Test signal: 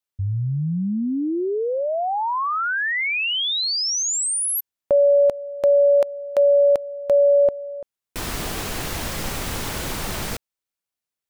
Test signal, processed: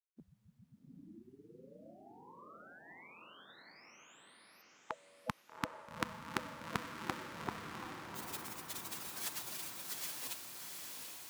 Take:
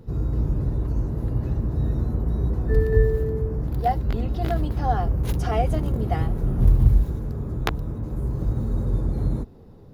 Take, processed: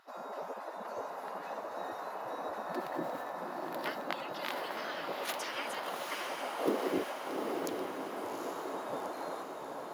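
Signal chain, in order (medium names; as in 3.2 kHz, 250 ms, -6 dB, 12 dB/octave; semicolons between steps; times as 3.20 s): spectral gate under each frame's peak -30 dB weak; Bessel high-pass 200 Hz, order 2; tilt EQ -2.5 dB/octave; on a send: echo that smears into a reverb 797 ms, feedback 59%, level -3.5 dB; on the sum: trim +7 dB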